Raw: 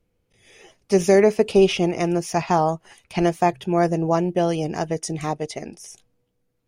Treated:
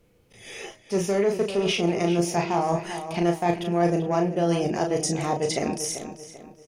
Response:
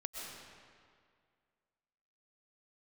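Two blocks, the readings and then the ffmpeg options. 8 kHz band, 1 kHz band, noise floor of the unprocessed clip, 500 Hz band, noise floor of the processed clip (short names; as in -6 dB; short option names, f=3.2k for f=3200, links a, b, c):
+2.5 dB, -3.5 dB, -72 dBFS, -4.5 dB, -57 dBFS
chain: -filter_complex "[0:a]acontrast=88,lowshelf=f=86:g=-7.5,areverse,acompressor=threshold=-26dB:ratio=6,areverse,asplit=2[a][b];[b]adelay=35,volume=-5dB[c];[a][c]amix=inputs=2:normalize=0,bandreject=f=313.1:t=h:w=4,bandreject=f=626.2:t=h:w=4,bandreject=f=939.3:t=h:w=4,bandreject=f=1.2524k:t=h:w=4,bandreject=f=1.5655k:t=h:w=4,bandreject=f=1.8786k:t=h:w=4,bandreject=f=2.1917k:t=h:w=4,bandreject=f=2.5048k:t=h:w=4,bandreject=f=2.8179k:t=h:w=4,bandreject=f=3.131k:t=h:w=4,bandreject=f=3.4441k:t=h:w=4,bandreject=f=3.7572k:t=h:w=4,bandreject=f=4.0703k:t=h:w=4,bandreject=f=4.3834k:t=h:w=4,bandreject=f=4.6965k:t=h:w=4,bandreject=f=5.0096k:t=h:w=4,bandreject=f=5.3227k:t=h:w=4,bandreject=f=5.6358k:t=h:w=4,bandreject=f=5.9489k:t=h:w=4,bandreject=f=6.262k:t=h:w=4,bandreject=f=6.5751k:t=h:w=4,bandreject=f=6.8882k:t=h:w=4,bandreject=f=7.2013k:t=h:w=4,bandreject=f=7.5144k:t=h:w=4,bandreject=f=7.8275k:t=h:w=4,asplit=2[d][e];[e]adelay=390,lowpass=f=3.7k:p=1,volume=-10dB,asplit=2[f][g];[g]adelay=390,lowpass=f=3.7k:p=1,volume=0.38,asplit=2[h][i];[i]adelay=390,lowpass=f=3.7k:p=1,volume=0.38,asplit=2[j][k];[k]adelay=390,lowpass=f=3.7k:p=1,volume=0.38[l];[f][h][j][l]amix=inputs=4:normalize=0[m];[d][m]amix=inputs=2:normalize=0,volume=3dB"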